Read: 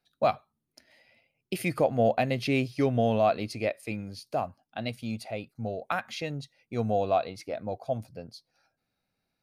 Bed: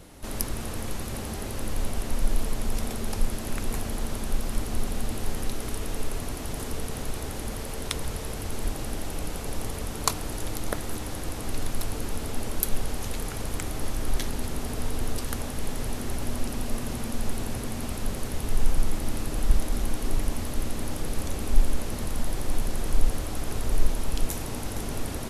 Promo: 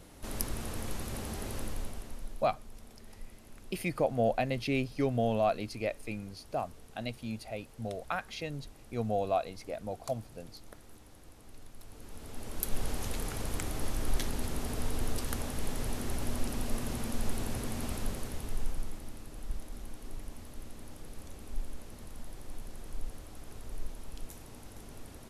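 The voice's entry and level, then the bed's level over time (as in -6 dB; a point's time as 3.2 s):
2.20 s, -4.5 dB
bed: 1.57 s -5 dB
2.48 s -22 dB
11.77 s -22 dB
12.86 s -4 dB
17.95 s -4 dB
19.18 s -16.5 dB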